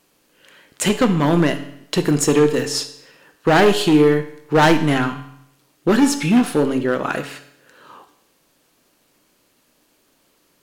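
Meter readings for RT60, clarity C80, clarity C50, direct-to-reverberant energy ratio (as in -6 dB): 0.75 s, 14.0 dB, 11.5 dB, 8.5 dB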